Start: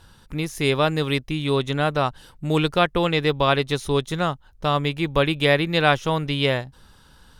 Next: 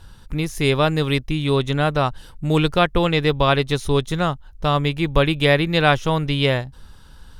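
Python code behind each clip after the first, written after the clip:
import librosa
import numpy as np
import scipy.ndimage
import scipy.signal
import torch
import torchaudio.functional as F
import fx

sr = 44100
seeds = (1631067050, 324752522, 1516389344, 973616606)

y = fx.low_shelf(x, sr, hz=84.0, db=11.0)
y = F.gain(torch.from_numpy(y), 1.5).numpy()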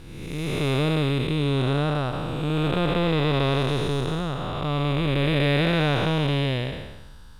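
y = fx.spec_blur(x, sr, span_ms=481.0)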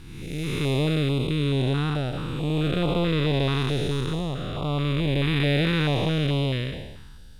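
y = fx.filter_held_notch(x, sr, hz=4.6, low_hz=580.0, high_hz=1700.0)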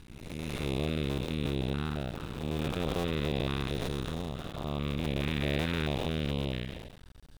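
y = fx.cycle_switch(x, sr, every=2, mode='muted')
y = F.gain(torch.from_numpy(y), -5.5).numpy()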